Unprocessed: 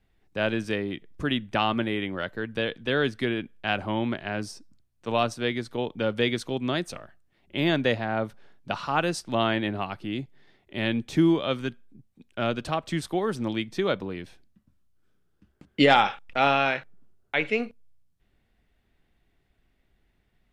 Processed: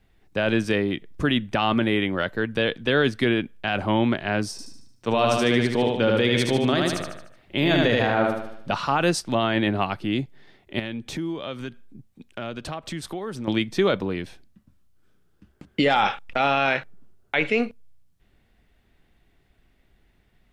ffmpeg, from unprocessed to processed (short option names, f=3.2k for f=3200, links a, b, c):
-filter_complex "[0:a]asettb=1/sr,asplit=3[a][b][c];[a]atrim=end=4.514[d];[b]atrim=start=4.51:end=8.73,asetpts=PTS-STARTPTS,afade=t=in:d=0.004:c=qsin,afade=t=out:st=4.216:d=0.004:c=qsin,aecho=1:1:75|150|225|300|375|450:0.708|0.333|0.156|0.0735|0.0345|0.0162,atrim=end_sample=186102[e];[c]atrim=start=8.726[f];[d][e]acrossfade=d=0.004:c1=hsin:c2=qsin[g];[g][f]acrossfade=d=0.004:c1=qsin:c2=hsin,asettb=1/sr,asplit=3[h][i][j];[h]atrim=end=10.794[k];[i]atrim=start=10.79:end=13.48,asetpts=PTS-STARTPTS,afade=t=in:d=0.004:c=qsin,afade=t=out:st=2.686:d=0.004:c=qsin,acompressor=threshold=-38dB:ratio=3:attack=3.2:release=140:knee=1:detection=peak[l];[j]atrim=start=13.476[m];[k][l]acrossfade=d=0.004:c1=hsin:c2=qsin[n];[n][m]acrossfade=d=0.004:c1=qsin:c2=hsin,alimiter=limit=-17dB:level=0:latency=1:release=14,volume=6.5dB"